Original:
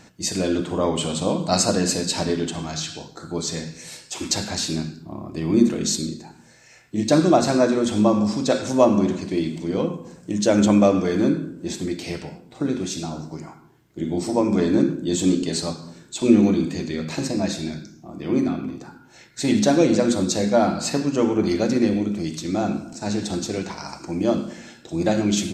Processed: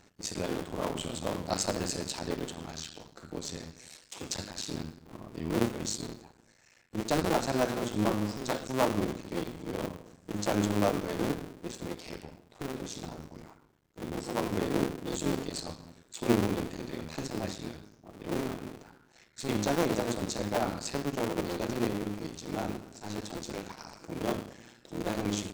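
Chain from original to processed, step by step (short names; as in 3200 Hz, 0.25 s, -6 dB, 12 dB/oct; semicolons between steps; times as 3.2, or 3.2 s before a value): cycle switcher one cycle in 2, muted; gain -9 dB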